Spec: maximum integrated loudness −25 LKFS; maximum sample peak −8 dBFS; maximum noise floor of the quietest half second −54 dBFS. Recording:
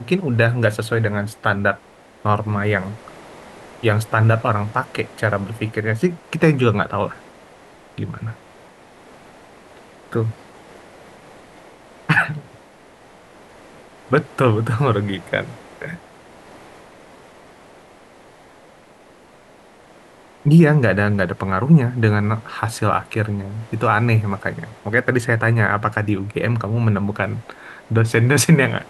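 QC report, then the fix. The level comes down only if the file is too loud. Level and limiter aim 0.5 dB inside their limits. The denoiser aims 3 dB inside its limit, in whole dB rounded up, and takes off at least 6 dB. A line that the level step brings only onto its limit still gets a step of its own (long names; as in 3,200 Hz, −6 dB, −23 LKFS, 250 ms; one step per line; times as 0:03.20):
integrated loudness −19.0 LKFS: out of spec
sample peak −2.0 dBFS: out of spec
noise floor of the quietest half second −48 dBFS: out of spec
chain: level −6.5 dB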